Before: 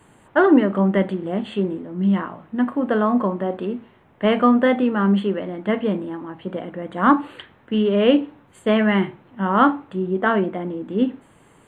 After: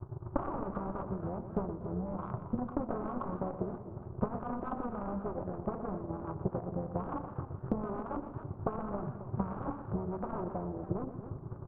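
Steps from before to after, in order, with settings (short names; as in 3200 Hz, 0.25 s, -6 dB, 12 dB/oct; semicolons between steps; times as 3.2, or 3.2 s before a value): overloaded stage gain 8.5 dB; resonant low shelf 160 Hz +11.5 dB, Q 3; wavefolder -21.5 dBFS; steep low-pass 1300 Hz 96 dB/oct; compressor 6:1, threshold -35 dBFS, peak gain reduction 10.5 dB; AM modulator 260 Hz, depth 60%; transient shaper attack +10 dB, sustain -11 dB; notch 460 Hz, Q 13; on a send: feedback echo 0.121 s, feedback 52%, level -11 dB; on the sum: warbling echo 0.272 s, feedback 47%, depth 175 cents, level -12.5 dB; gain +1.5 dB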